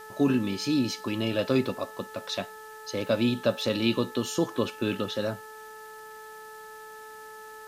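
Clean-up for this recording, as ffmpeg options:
-af "bandreject=f=434.5:t=h:w=4,bandreject=f=869:t=h:w=4,bandreject=f=1.3035k:t=h:w=4,bandreject=f=1.738k:t=h:w=4,afwtdn=0.002"

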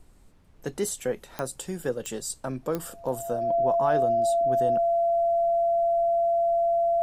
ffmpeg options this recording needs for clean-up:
-af "adeclick=t=4,bandreject=f=680:w=30,agate=range=-21dB:threshold=-44dB"

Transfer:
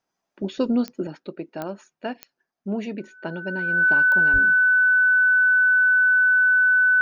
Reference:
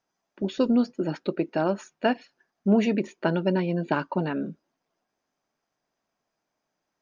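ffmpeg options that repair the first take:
-filter_complex "[0:a]adeclick=t=4,bandreject=f=1.5k:w=30,asplit=3[a][b][c];[a]afade=t=out:st=4.32:d=0.02[d];[b]highpass=f=140:w=0.5412,highpass=f=140:w=1.3066,afade=t=in:st=4.32:d=0.02,afade=t=out:st=4.44:d=0.02[e];[c]afade=t=in:st=4.44:d=0.02[f];[d][e][f]amix=inputs=3:normalize=0,asetnsamples=n=441:p=0,asendcmd='1.07 volume volume 7dB',volume=0dB"

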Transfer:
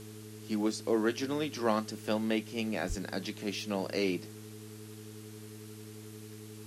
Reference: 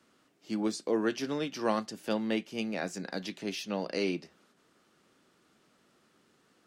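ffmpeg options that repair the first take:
-filter_complex "[0:a]bandreject=f=107.8:t=h:w=4,bandreject=f=215.6:t=h:w=4,bandreject=f=323.4:t=h:w=4,bandreject=f=431.2:t=h:w=4,bandreject=f=420:w=30,asplit=3[a][b][c];[a]afade=t=out:st=2.88:d=0.02[d];[b]highpass=f=140:w=0.5412,highpass=f=140:w=1.3066,afade=t=in:st=2.88:d=0.02,afade=t=out:st=3:d=0.02[e];[c]afade=t=in:st=3:d=0.02[f];[d][e][f]amix=inputs=3:normalize=0,afwtdn=0.002"

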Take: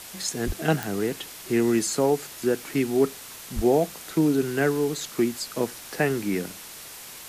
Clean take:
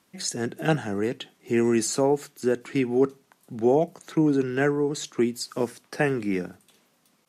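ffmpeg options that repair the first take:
-filter_complex "[0:a]adeclick=t=4,asplit=3[a][b][c];[a]afade=t=out:st=0.46:d=0.02[d];[b]highpass=f=140:w=0.5412,highpass=f=140:w=1.3066,afade=t=in:st=0.46:d=0.02,afade=t=out:st=0.58:d=0.02[e];[c]afade=t=in:st=0.58:d=0.02[f];[d][e][f]amix=inputs=3:normalize=0,asplit=3[g][h][i];[g]afade=t=out:st=3.55:d=0.02[j];[h]highpass=f=140:w=0.5412,highpass=f=140:w=1.3066,afade=t=in:st=3.55:d=0.02,afade=t=out:st=3.67:d=0.02[k];[i]afade=t=in:st=3.67:d=0.02[l];[j][k][l]amix=inputs=3:normalize=0,afwtdn=0.01"

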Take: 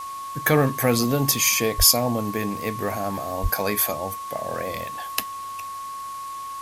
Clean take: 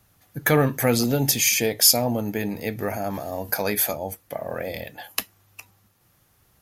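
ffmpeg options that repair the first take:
-filter_complex "[0:a]bandreject=f=1.1k:w=30,asplit=3[a][b][c];[a]afade=t=out:st=1.77:d=0.02[d];[b]highpass=f=140:w=0.5412,highpass=f=140:w=1.3066,afade=t=in:st=1.77:d=0.02,afade=t=out:st=1.89:d=0.02[e];[c]afade=t=in:st=1.89:d=0.02[f];[d][e][f]amix=inputs=3:normalize=0,asplit=3[g][h][i];[g]afade=t=out:st=3.42:d=0.02[j];[h]highpass=f=140:w=0.5412,highpass=f=140:w=1.3066,afade=t=in:st=3.42:d=0.02,afade=t=out:st=3.54:d=0.02[k];[i]afade=t=in:st=3.54:d=0.02[l];[j][k][l]amix=inputs=3:normalize=0,afwtdn=0.0063"

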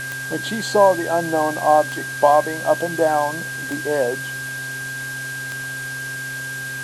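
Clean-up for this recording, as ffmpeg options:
-af "adeclick=t=4,bandreject=f=131.3:t=h:w=4,bandreject=f=262.6:t=h:w=4,bandreject=f=393.9:t=h:w=4,bandreject=f=525.2:t=h:w=4,bandreject=f=656.5:t=h:w=4,bandreject=f=1.6k:w=30,afftdn=nr=30:nf=-29"

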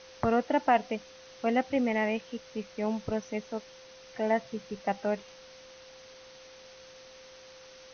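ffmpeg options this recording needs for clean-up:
-af "bandreject=f=520:w=30,afwtdn=0.0035"

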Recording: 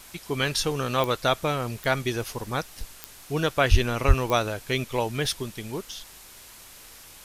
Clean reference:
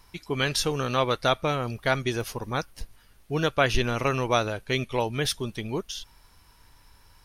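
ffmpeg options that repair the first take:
-filter_complex "[0:a]adeclick=t=4,asplit=3[a][b][c];[a]afade=t=out:st=3.7:d=0.02[d];[b]highpass=f=140:w=0.5412,highpass=f=140:w=1.3066,afade=t=in:st=3.7:d=0.02,afade=t=out:st=3.82:d=0.02[e];[c]afade=t=in:st=3.82:d=0.02[f];[d][e][f]amix=inputs=3:normalize=0,asplit=3[g][h][i];[g]afade=t=out:st=4.07:d=0.02[j];[h]highpass=f=140:w=0.5412,highpass=f=140:w=1.3066,afade=t=in:st=4.07:d=0.02,afade=t=out:st=4.19:d=0.02[k];[i]afade=t=in:st=4.19:d=0.02[l];[j][k][l]amix=inputs=3:normalize=0,afwtdn=0.005,asetnsamples=n=441:p=0,asendcmd='5.43 volume volume 3dB',volume=0dB"

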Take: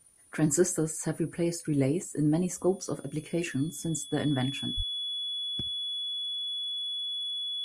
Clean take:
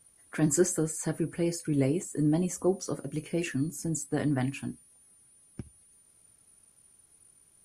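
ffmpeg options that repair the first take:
-filter_complex "[0:a]bandreject=f=3.4k:w=30,asplit=3[a][b][c];[a]afade=t=out:st=4.76:d=0.02[d];[b]highpass=f=140:w=0.5412,highpass=f=140:w=1.3066,afade=t=in:st=4.76:d=0.02,afade=t=out:st=4.88:d=0.02[e];[c]afade=t=in:st=4.88:d=0.02[f];[d][e][f]amix=inputs=3:normalize=0"

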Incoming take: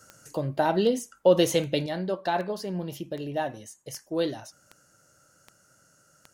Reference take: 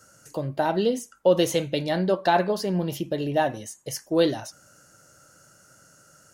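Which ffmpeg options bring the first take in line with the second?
-af "adeclick=t=4,asetnsamples=n=441:p=0,asendcmd='1.86 volume volume 6.5dB',volume=0dB"

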